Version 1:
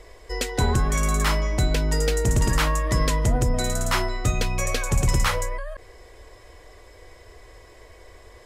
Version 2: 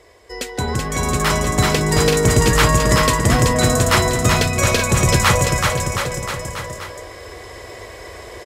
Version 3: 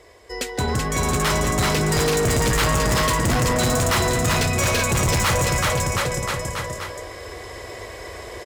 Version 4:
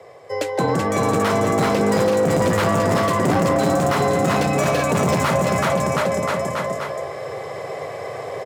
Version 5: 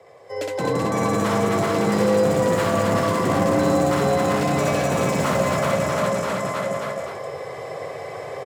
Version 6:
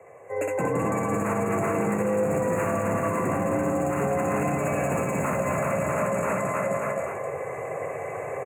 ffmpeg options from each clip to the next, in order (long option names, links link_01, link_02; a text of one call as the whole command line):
ffmpeg -i in.wav -filter_complex "[0:a]highpass=86,asplit=2[link_01][link_02];[link_02]aecho=0:1:380|722|1030|1307|1556:0.631|0.398|0.251|0.158|0.1[link_03];[link_01][link_03]amix=inputs=2:normalize=0,dynaudnorm=framelen=270:gausssize=9:maxgain=12.5dB" out.wav
ffmpeg -i in.wav -af "volume=17dB,asoftclip=hard,volume=-17dB" out.wav
ffmpeg -i in.wav -filter_complex "[0:a]afreqshift=50,equalizer=frequency=580:width=0.39:gain=14,acrossover=split=290[link_01][link_02];[link_02]acompressor=threshold=-11dB:ratio=6[link_03];[link_01][link_03]amix=inputs=2:normalize=0,volume=-5.5dB" out.wav
ffmpeg -i in.wav -af "aecho=1:1:64.14|174.9|262.4:0.794|0.501|0.708,volume=-6dB" out.wav
ffmpeg -i in.wav -af "afftfilt=real='re*(1-between(b*sr/4096,2800,6300))':imag='im*(1-between(b*sr/4096,2800,6300))':win_size=4096:overlap=0.75,alimiter=limit=-16.5dB:level=0:latency=1:release=146" out.wav